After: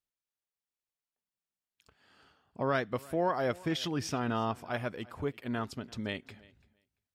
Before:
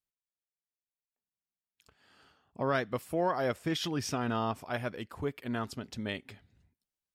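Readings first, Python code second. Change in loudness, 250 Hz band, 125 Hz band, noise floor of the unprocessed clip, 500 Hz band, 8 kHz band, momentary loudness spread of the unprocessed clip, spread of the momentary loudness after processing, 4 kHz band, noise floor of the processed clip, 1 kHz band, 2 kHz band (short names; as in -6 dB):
0.0 dB, 0.0 dB, 0.0 dB, under -85 dBFS, 0.0 dB, -2.0 dB, 8 LU, 8 LU, -1.0 dB, under -85 dBFS, 0.0 dB, 0.0 dB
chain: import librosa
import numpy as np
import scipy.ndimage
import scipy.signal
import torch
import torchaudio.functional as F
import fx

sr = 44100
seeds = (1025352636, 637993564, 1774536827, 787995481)

y = fx.high_shelf(x, sr, hz=7200.0, db=-5.0)
y = fx.echo_feedback(y, sr, ms=340, feedback_pct=15, wet_db=-23)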